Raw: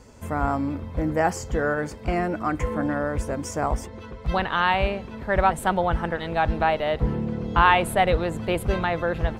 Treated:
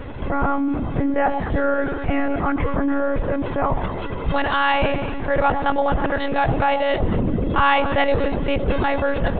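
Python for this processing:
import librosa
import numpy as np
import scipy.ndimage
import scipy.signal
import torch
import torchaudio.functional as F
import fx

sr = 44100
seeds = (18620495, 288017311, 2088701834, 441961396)

p1 = x + fx.echo_alternate(x, sr, ms=109, hz=1000.0, feedback_pct=52, wet_db=-10.0, dry=0)
p2 = fx.lpc_monotone(p1, sr, seeds[0], pitch_hz=280.0, order=16)
y = fx.env_flatten(p2, sr, amount_pct=50)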